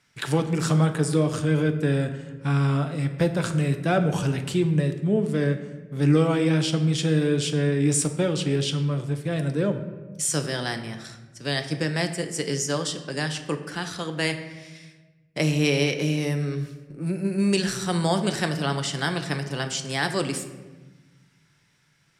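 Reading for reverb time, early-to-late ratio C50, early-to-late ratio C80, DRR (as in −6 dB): 1.2 s, 10.0 dB, 12.0 dB, 6.5 dB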